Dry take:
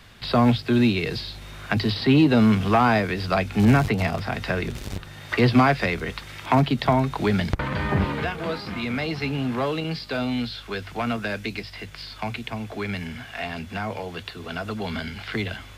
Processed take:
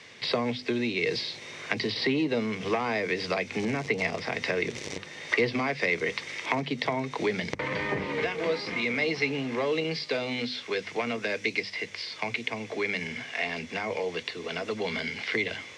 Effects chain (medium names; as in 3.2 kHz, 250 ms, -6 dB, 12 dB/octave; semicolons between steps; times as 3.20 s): hum notches 50/100/150/200/250 Hz; compression 3:1, threshold -26 dBFS, peak gain reduction 10.5 dB; cabinet simulation 190–8300 Hz, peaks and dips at 210 Hz -4 dB, 470 Hz +7 dB, 750 Hz -4 dB, 1.4 kHz -8 dB, 2.1 kHz +9 dB, 5.8 kHz +7 dB